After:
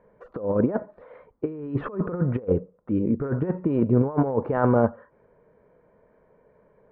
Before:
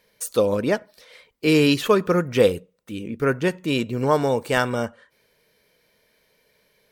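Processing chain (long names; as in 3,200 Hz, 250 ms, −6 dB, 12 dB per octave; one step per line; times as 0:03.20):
low-pass filter 1,200 Hz 24 dB per octave
compressor whose output falls as the input rises −25 dBFS, ratio −0.5
level +3 dB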